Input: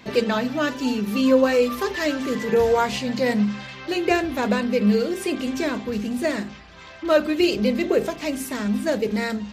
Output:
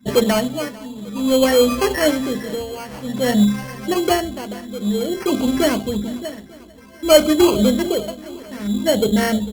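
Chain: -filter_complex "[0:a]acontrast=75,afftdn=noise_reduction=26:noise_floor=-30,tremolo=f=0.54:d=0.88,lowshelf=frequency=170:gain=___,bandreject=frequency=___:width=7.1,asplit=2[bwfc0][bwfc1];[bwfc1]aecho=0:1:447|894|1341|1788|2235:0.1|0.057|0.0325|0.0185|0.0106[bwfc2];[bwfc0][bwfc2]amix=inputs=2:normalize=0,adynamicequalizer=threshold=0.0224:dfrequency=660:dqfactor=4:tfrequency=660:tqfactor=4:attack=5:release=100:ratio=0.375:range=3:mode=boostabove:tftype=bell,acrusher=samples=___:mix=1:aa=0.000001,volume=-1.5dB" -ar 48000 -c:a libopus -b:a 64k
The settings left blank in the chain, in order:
8.5, 4400, 12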